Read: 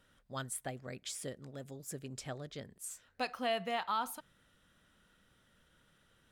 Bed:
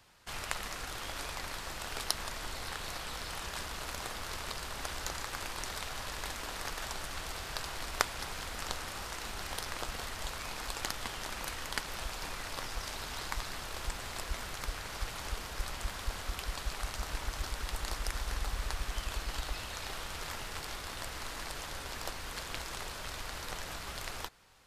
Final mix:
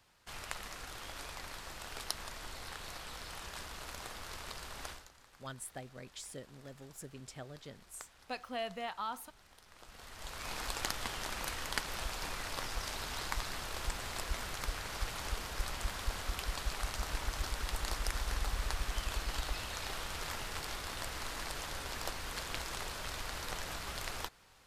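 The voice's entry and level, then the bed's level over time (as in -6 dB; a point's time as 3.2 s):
5.10 s, -4.5 dB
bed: 4.9 s -5.5 dB
5.1 s -22.5 dB
9.63 s -22.5 dB
10.52 s 0 dB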